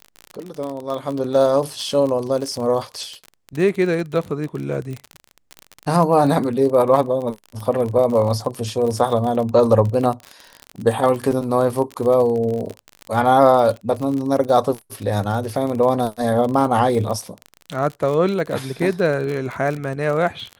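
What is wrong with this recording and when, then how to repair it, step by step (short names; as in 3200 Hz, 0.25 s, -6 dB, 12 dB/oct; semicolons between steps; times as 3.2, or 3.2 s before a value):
crackle 40/s -24 dBFS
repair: de-click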